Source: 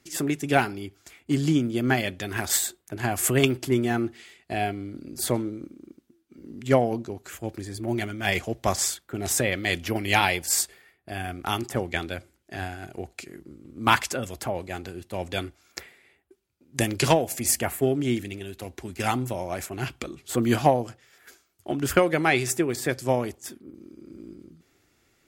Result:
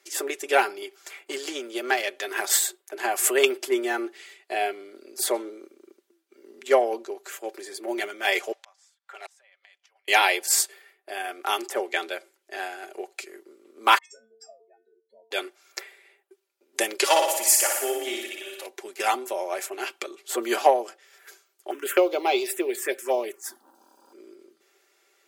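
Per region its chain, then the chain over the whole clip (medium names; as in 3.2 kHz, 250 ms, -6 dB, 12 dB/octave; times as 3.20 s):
0.82–2.28 s: self-modulated delay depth 0.075 ms + bass shelf 280 Hz -8 dB + three bands compressed up and down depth 40%
8.52–10.08 s: high-pass 730 Hz 24 dB/octave + inverted gate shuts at -27 dBFS, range -33 dB + distance through air 59 m
13.98–15.31 s: spectral contrast enhancement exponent 3.7 + inharmonic resonator 220 Hz, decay 0.48 s, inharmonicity 0.008
17.04–18.66 s: high-pass 750 Hz 6 dB/octave + comb 3.5 ms, depth 58% + flutter echo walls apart 10.1 m, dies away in 0.91 s
21.70–24.13 s: companding laws mixed up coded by mu + touch-sensitive phaser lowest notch 310 Hz, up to 1.8 kHz, full sweep at -18 dBFS
whole clip: steep high-pass 370 Hz 36 dB/octave; comb 5.1 ms, depth 48%; trim +1.5 dB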